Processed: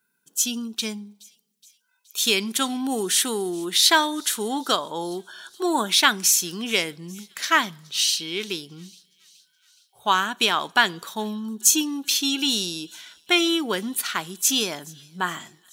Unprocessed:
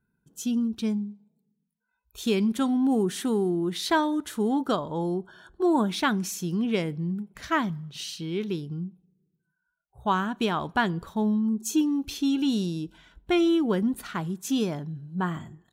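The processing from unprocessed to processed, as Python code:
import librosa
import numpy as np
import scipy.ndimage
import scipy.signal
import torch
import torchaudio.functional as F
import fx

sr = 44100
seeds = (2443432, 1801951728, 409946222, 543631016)

y = scipy.signal.sosfilt(scipy.signal.butter(2, 270.0, 'highpass', fs=sr, output='sos'), x)
y = fx.tilt_shelf(y, sr, db=-9.5, hz=1500.0)
y = fx.echo_wet_highpass(y, sr, ms=421, feedback_pct=60, hz=3800.0, wet_db=-22.5)
y = y * 10.0 ** (8.0 / 20.0)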